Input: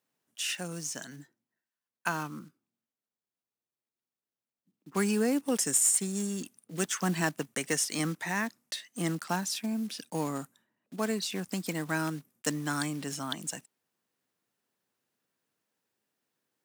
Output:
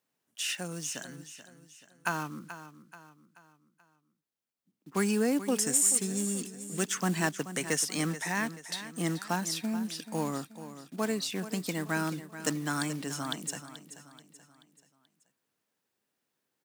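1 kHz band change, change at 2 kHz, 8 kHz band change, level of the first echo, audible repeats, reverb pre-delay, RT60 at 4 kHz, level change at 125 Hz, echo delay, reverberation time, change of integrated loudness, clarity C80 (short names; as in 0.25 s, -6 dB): +0.5 dB, +0.5 dB, +0.5 dB, -13.0 dB, 4, none, none, +0.5 dB, 0.432 s, none, 0.0 dB, none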